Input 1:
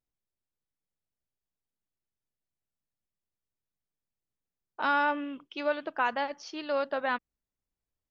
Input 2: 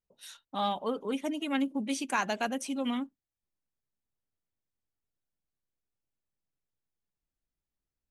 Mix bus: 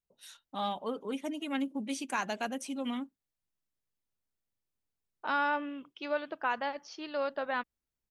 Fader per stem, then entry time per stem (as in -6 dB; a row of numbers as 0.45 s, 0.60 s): -3.5 dB, -3.5 dB; 0.45 s, 0.00 s